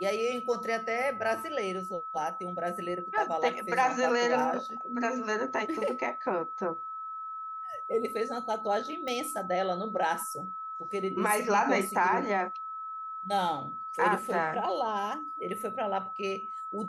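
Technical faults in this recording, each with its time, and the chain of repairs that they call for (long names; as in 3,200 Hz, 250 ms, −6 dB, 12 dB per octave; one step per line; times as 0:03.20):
whistle 1,300 Hz −36 dBFS
0:09.08: click −23 dBFS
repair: click removal
notch filter 1,300 Hz, Q 30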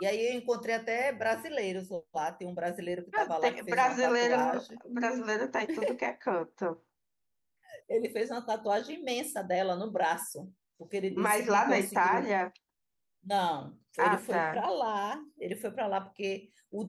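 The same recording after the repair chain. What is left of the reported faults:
none of them is left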